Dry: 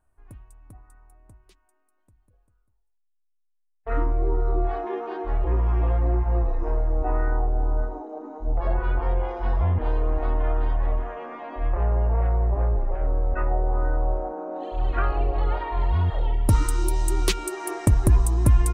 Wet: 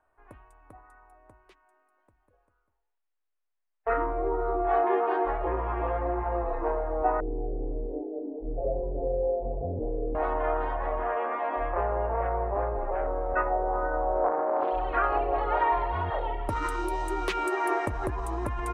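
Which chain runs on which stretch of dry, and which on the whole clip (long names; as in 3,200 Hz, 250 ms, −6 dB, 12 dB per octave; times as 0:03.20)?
0:07.20–0:10.15: Butterworth low-pass 580 Hz 48 dB per octave + comb filter 7.2 ms, depth 99%
0:14.24–0:14.71: high-shelf EQ 6,000 Hz −11 dB + highs frequency-modulated by the lows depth 0.49 ms
whole clip: high-shelf EQ 9,500 Hz −3.5 dB; brickwall limiter −18 dBFS; three-way crossover with the lows and the highs turned down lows −18 dB, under 380 Hz, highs −17 dB, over 2,500 Hz; level +8 dB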